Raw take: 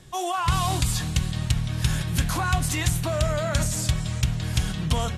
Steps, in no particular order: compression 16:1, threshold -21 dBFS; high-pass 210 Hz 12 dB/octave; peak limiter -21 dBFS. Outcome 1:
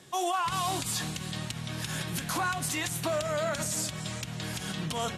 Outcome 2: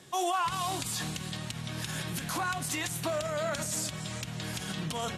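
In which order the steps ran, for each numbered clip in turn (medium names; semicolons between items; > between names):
compression > high-pass > peak limiter; compression > peak limiter > high-pass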